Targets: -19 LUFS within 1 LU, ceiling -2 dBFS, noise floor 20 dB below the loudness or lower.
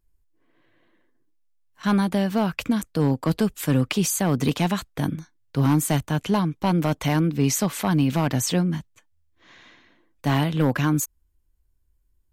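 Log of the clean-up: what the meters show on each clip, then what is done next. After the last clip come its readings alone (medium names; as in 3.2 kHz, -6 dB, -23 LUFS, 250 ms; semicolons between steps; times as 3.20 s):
clipped samples 0.5%; clipping level -12.0 dBFS; loudness -23.5 LUFS; peak level -12.0 dBFS; loudness target -19.0 LUFS
-> clip repair -12 dBFS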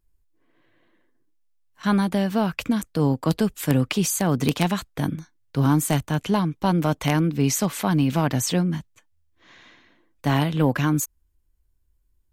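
clipped samples 0.0%; loudness -23.0 LUFS; peak level -3.0 dBFS; loudness target -19.0 LUFS
-> trim +4 dB; peak limiter -2 dBFS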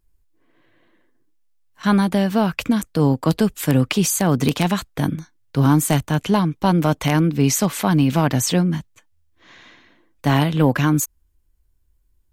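loudness -19.0 LUFS; peak level -2.0 dBFS; noise floor -62 dBFS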